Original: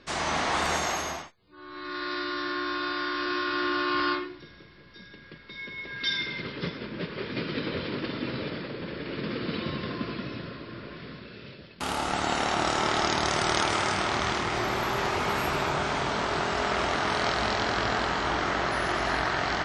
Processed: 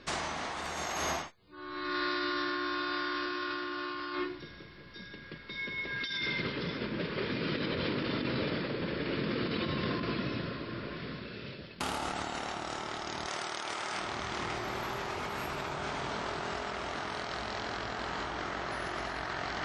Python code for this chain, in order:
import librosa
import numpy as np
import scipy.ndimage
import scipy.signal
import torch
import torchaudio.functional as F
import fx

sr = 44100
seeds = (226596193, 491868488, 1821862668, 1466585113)

y = fx.highpass(x, sr, hz=400.0, slope=6, at=(13.26, 14.01))
y = fx.over_compress(y, sr, threshold_db=-33.0, ratio=-1.0)
y = y * 10.0 ** (-2.5 / 20.0)